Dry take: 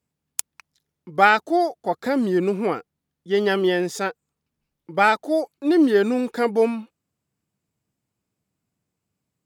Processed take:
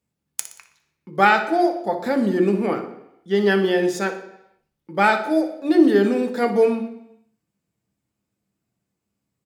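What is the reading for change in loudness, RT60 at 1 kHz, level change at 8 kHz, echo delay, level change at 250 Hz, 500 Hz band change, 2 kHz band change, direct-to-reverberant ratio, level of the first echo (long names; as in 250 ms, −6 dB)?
+1.5 dB, 0.80 s, −0.5 dB, 60 ms, +2.5 dB, +1.5 dB, +0.5 dB, 4.0 dB, −12.5 dB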